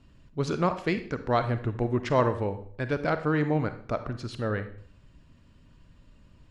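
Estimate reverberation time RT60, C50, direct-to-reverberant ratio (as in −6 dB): 0.50 s, 11.5 dB, 10.0 dB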